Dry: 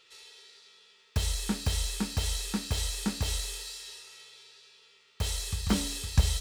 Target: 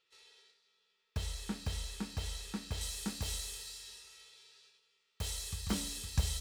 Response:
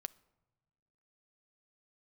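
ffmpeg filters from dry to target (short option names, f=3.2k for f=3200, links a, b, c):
-filter_complex "[0:a]asetnsamples=n=441:p=0,asendcmd='2.81 highshelf g 4.5',highshelf=f=5.4k:g=-5.5,agate=range=-8dB:threshold=-55dB:ratio=16:detection=peak[a];[1:a]atrim=start_sample=2205[b];[a][b]afir=irnorm=-1:irlink=0,volume=-4.5dB"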